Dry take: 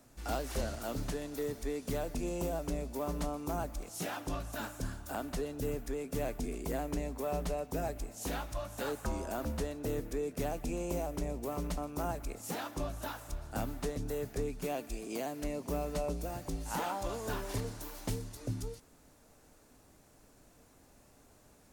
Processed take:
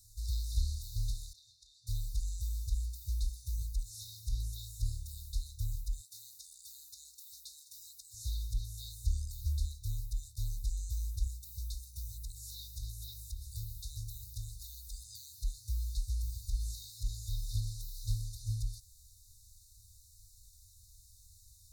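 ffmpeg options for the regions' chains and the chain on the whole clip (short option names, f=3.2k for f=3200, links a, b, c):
-filter_complex "[0:a]asettb=1/sr,asplit=3[a][b][c];[a]atrim=end=1.334[d];[b]atrim=start=1.33:end=1.87,asetpts=PTS-STARTPTS,afade=t=in:d=0.004:c=qsin,afade=t=out:st=0.536:d=0.004:c=qsin,highpass=390,lowpass=2.5k,asplit=2[e][f];[f]adelay=33,volume=-9dB[g];[e][g]amix=inputs=2:normalize=0,atrim=end_sample=23814[h];[c]atrim=start=1.866[i];[d][h]acrossfade=d=0.004:c1=hsin:c2=qsin[j];[j][i]acrossfade=d=0.004:c1=qsin:c2=hsin,asettb=1/sr,asplit=3[k][l][m];[k]atrim=end=6.014[n];[l]atrim=start=6.01:end=8.14,asetpts=PTS-STARTPTS,afade=t=in:d=0.004:c=qsin,afade=t=out:st=2.126:d=0.004:c=qsin,highpass=710,aecho=1:1:201:0.0944,atrim=end_sample=93933[o];[m]atrim=start=8.136[p];[n][o]acrossfade=d=0.004:c1=hsin:c2=qsin[q];[q][p]acrossfade=d=0.004:c1=qsin:c2=hsin,asettb=1/sr,asplit=3[r][s][t];[r]atrim=end=11.274[u];[s]atrim=start=11.27:end=15.04,asetpts=PTS-STARTPTS,afade=t=in:d=0.004:c=qsin,afade=t=out:st=3.766:d=0.004:c=qsin,highpass=f=130:p=1,highshelf=f=9.8k:g=8,aeval=exprs='val(0)+0.00178*(sin(2*PI*60*n/s)+sin(2*PI*2*60*n/s)/2+sin(2*PI*3*60*n/s)/3+sin(2*PI*4*60*n/s)/4+sin(2*PI*5*60*n/s)/5)':c=same[v];[t]atrim=start=15.036[w];[u][v]acrossfade=d=0.004:c1=hsin:c2=qsin[x];[x][w]acrossfade=d=0.004:c1=qsin:c2=hsin,acrossover=split=3900[y][z];[z]acompressor=threshold=-55dB:ratio=4:attack=1:release=60[aa];[y][aa]amix=inputs=2:normalize=0,afftfilt=real='re*(1-between(b*sr/4096,110,3600))':imag='im*(1-between(b*sr/4096,110,3600))':win_size=4096:overlap=0.75,volume=6.5dB"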